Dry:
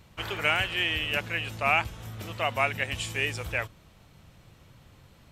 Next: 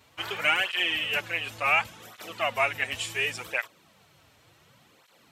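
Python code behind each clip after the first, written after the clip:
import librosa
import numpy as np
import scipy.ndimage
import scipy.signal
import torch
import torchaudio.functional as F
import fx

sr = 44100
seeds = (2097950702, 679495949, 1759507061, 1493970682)

y = fx.highpass(x, sr, hz=480.0, slope=6)
y = fx.flanger_cancel(y, sr, hz=0.69, depth_ms=6.1)
y = y * 10.0 ** (4.5 / 20.0)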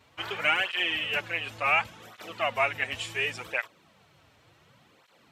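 y = fx.high_shelf(x, sr, hz=6200.0, db=-10.0)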